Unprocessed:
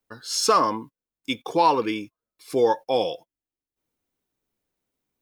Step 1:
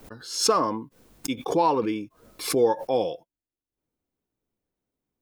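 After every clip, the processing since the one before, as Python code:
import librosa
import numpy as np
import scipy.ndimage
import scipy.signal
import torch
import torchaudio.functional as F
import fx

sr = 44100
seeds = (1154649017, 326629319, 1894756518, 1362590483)

y = fx.tilt_shelf(x, sr, db=5.0, hz=970.0)
y = fx.pre_swell(y, sr, db_per_s=100.0)
y = F.gain(torch.from_numpy(y), -4.0).numpy()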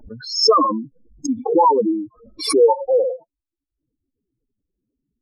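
y = fx.spec_expand(x, sr, power=3.9)
y = F.gain(torch.from_numpy(y), 8.5).numpy()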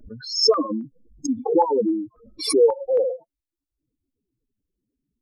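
y = fx.filter_held_notch(x, sr, hz=3.7, low_hz=840.0, high_hz=2100.0)
y = F.gain(torch.from_numpy(y), -2.0).numpy()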